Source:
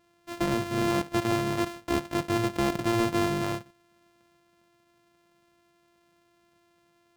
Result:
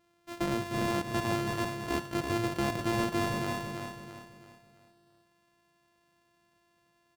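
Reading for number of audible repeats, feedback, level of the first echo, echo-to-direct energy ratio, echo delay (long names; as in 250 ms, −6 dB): 4, 41%, −5.0 dB, −4.0 dB, 332 ms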